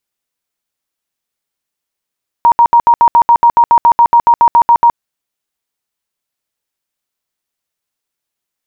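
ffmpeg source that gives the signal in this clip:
-f lavfi -i "aevalsrc='0.708*sin(2*PI*942*mod(t,0.14))*lt(mod(t,0.14),65/942)':d=2.52:s=44100"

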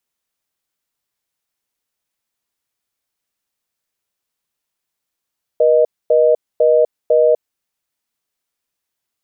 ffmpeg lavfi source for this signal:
-f lavfi -i "aevalsrc='0.266*(sin(2*PI*480*t)+sin(2*PI*620*t))*clip(min(mod(t,0.5),0.25-mod(t,0.5))/0.005,0,1)':d=1.83:s=44100"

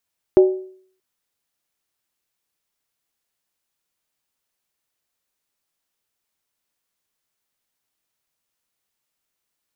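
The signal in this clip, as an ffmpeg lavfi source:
-f lavfi -i "aevalsrc='0.562*pow(10,-3*t/0.55)*sin(2*PI*375*t)+0.141*pow(10,-3*t/0.436)*sin(2*PI*597.8*t)+0.0355*pow(10,-3*t/0.376)*sin(2*PI*801*t)+0.00891*pow(10,-3*t/0.363)*sin(2*PI*861*t)+0.00224*pow(10,-3*t/0.338)*sin(2*PI*994.9*t)':d=0.63:s=44100"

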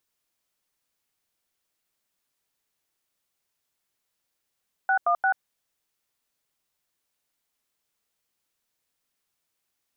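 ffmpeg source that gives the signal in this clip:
-f lavfi -i "aevalsrc='0.0841*clip(min(mod(t,0.174),0.086-mod(t,0.174))/0.002,0,1)*(eq(floor(t/0.174),0)*(sin(2*PI*770*mod(t,0.174))+sin(2*PI*1477*mod(t,0.174)))+eq(floor(t/0.174),1)*(sin(2*PI*697*mod(t,0.174))+sin(2*PI*1209*mod(t,0.174)))+eq(floor(t/0.174),2)*(sin(2*PI*770*mod(t,0.174))+sin(2*PI*1477*mod(t,0.174))))':d=0.522:s=44100"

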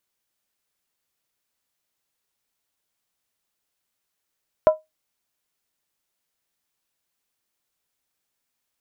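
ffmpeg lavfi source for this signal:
-f lavfi -i "aevalsrc='0.473*pow(10,-3*t/0.18)*sin(2*PI*625*t)+0.133*pow(10,-3*t/0.143)*sin(2*PI*996.2*t)+0.0376*pow(10,-3*t/0.123)*sin(2*PI*1335*t)+0.0106*pow(10,-3*t/0.119)*sin(2*PI*1435*t)+0.00299*pow(10,-3*t/0.111)*sin(2*PI*1658.1*t)':d=0.63:s=44100"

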